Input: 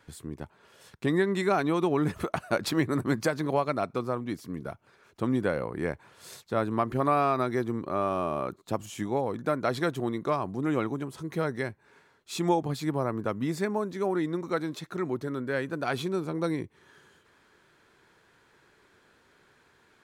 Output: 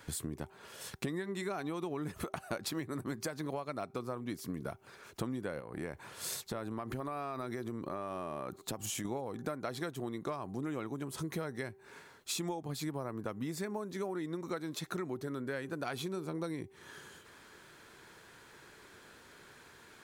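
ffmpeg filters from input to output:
-filter_complex "[0:a]asettb=1/sr,asplit=3[s0][s1][s2];[s0]atrim=end=5.604[s3];[s1]atrim=start=5.6:end=9.05,asetpts=PTS-STARTPTS,afade=t=in:d=0.004:c=qsin,afade=t=out:st=3.446:d=0.004:c=qsin,acompressor=threshold=0.0126:ratio=3:attack=3.2:release=140:knee=1:detection=peak[s4];[s2]atrim=start=9.046[s5];[s3][s4]acrossfade=d=0.004:c1=hsin:c2=qsin[s6];[s6][s5]acrossfade=d=0.004:c1=qsin:c2=hsin,highshelf=f=5800:g=8.5,bandreject=f=388.4:t=h:w=4,bandreject=f=776.8:t=h:w=4,acompressor=threshold=0.01:ratio=10,volume=1.78"

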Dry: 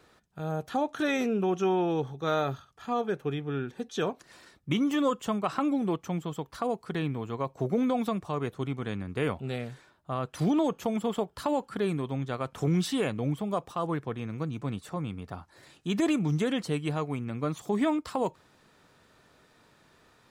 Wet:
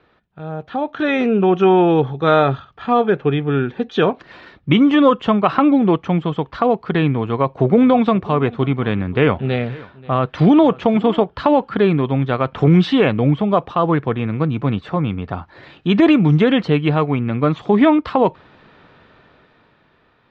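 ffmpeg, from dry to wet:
-filter_complex "[0:a]asettb=1/sr,asplit=3[s0][s1][s2];[s0]atrim=end=7.124[s3];[s1]atrim=start=7.12:end=11.3,asetpts=PTS-STARTPTS,afade=t=in:d=0.004:c=qsin,afade=t=out:st=4.176:d=0.004:c=qsin,aecho=1:1:533:0.0841,atrim=end_sample=184338[s4];[s2]atrim=start=11.296[s5];[s3][s4]acrossfade=d=0.004:c1=hsin:c2=qsin[s6];[s6][s5]acrossfade=d=0.004:c1=qsin:c2=hsin,dynaudnorm=f=110:g=21:m=3.55,lowpass=f=3500:w=0.5412,lowpass=f=3500:w=1.3066,volume=1.5"

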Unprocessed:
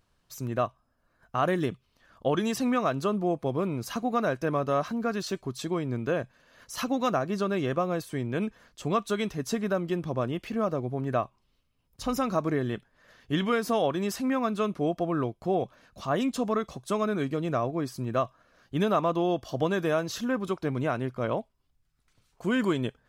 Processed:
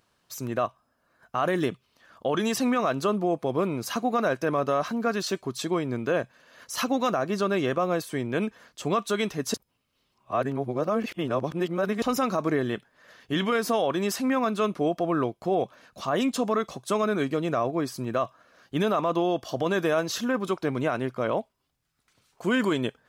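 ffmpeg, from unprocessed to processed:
-filter_complex "[0:a]asplit=3[s0][s1][s2];[s0]atrim=end=9.542[s3];[s1]atrim=start=9.538:end=12.022,asetpts=PTS-STARTPTS,areverse[s4];[s2]atrim=start=12.018[s5];[s3][s4]acrossfade=d=0.004:c1=hsin:c2=hsin[s6];[s6][s5]acrossfade=d=0.004:c1=hsin:c2=hsin,highpass=f=250:p=1,alimiter=limit=0.0944:level=0:latency=1:release=11,volume=1.78"

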